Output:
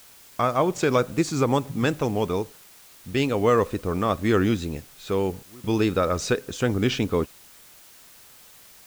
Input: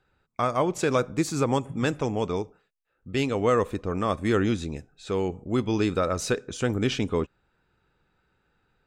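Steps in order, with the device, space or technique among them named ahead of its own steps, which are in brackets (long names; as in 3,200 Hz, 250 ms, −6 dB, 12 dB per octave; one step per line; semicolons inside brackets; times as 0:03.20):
worn cassette (low-pass filter 7,900 Hz; tape wow and flutter; tape dropouts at 0:05.43/0:07.81, 207 ms −25 dB; white noise bed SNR 25 dB)
level +2.5 dB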